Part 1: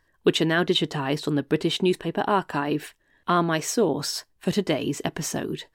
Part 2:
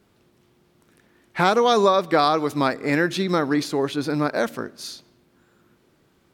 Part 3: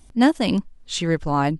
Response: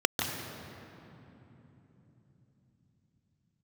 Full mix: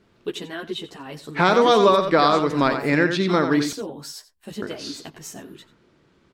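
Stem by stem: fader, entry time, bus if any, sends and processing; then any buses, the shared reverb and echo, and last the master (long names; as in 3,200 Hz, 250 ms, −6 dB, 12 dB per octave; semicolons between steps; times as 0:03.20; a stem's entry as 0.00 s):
−7.5 dB, 0.00 s, no send, echo send −16.5 dB, high-shelf EQ 6,400 Hz +6.5 dB; string-ensemble chorus
+1.5 dB, 0.00 s, muted 0:03.73–0:04.62, no send, echo send −8 dB, low-pass filter 5,500 Hz 12 dB per octave; notch filter 770 Hz, Q 12
−14.5 dB, 1.40 s, no send, no echo send, no processing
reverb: not used
echo: single-tap delay 89 ms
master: no processing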